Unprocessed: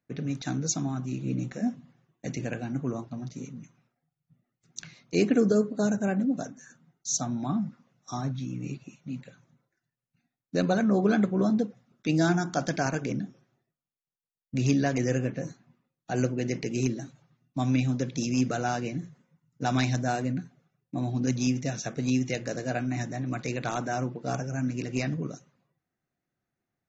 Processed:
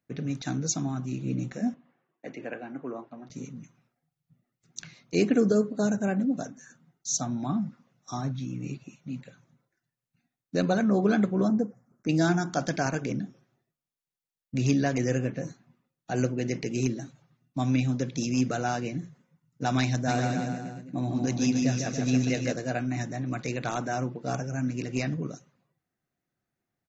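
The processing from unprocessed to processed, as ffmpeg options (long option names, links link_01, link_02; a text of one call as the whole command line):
ffmpeg -i in.wav -filter_complex "[0:a]asettb=1/sr,asplit=3[link_01][link_02][link_03];[link_01]atrim=end=1.744[link_04];[link_02]atrim=start=1.74:end=3.3,asetpts=PTS-STARTPTS,afade=type=in:duration=0.004:curve=qsin,afade=type=out:start_time=1.556:duration=0.004:curve=qsin,acrossover=split=270 2900:gain=0.0708 1 0.0794[link_05][link_06][link_07];[link_05][link_06][link_07]amix=inputs=3:normalize=0[link_08];[link_03]atrim=start=3.296[link_09];[link_04][link_08]acrossfade=duration=0.004:curve1=hsin:curve2=qsin[link_10];[link_10][link_09]acrossfade=duration=0.004:curve1=qsin:curve2=hsin,asettb=1/sr,asplit=3[link_11][link_12][link_13];[link_11]atrim=end=11.484[link_14];[link_12]atrim=start=11.48:end=12.09,asetpts=PTS-STARTPTS,afade=type=in:duration=0.004:curve=qsin,afade=type=out:start_time=0.606:duration=0.004:curve=qsin,asuperstop=centerf=3300:order=4:qfactor=0.68[link_15];[link_13]atrim=start=12.086[link_16];[link_14][link_15]acrossfade=duration=0.004:curve1=hsin:curve2=qsin[link_17];[link_17][link_16]acrossfade=duration=0.004:curve1=qsin:curve2=hsin,asplit=3[link_18][link_19][link_20];[link_18]afade=type=out:start_time=20.07:duration=0.02[link_21];[link_19]aecho=1:1:150|285|406.5|515.8|614.3:0.631|0.398|0.251|0.158|0.1,afade=type=in:start_time=20.07:duration=0.02,afade=type=out:start_time=22.52:duration=0.02[link_22];[link_20]afade=type=in:start_time=22.52:duration=0.02[link_23];[link_21][link_22][link_23]amix=inputs=3:normalize=0" out.wav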